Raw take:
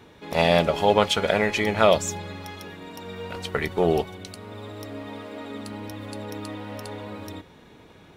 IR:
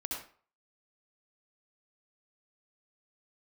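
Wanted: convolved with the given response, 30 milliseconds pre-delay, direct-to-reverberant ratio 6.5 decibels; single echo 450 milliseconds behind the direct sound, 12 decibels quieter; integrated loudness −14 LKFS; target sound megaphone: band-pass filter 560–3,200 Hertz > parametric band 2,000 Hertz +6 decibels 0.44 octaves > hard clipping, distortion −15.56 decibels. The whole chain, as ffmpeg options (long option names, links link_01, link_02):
-filter_complex "[0:a]aecho=1:1:450:0.251,asplit=2[link_01][link_02];[1:a]atrim=start_sample=2205,adelay=30[link_03];[link_02][link_03]afir=irnorm=-1:irlink=0,volume=-8dB[link_04];[link_01][link_04]amix=inputs=2:normalize=0,highpass=560,lowpass=3200,equalizer=frequency=2000:width_type=o:width=0.44:gain=6,asoftclip=type=hard:threshold=-13.5dB,volume=10.5dB"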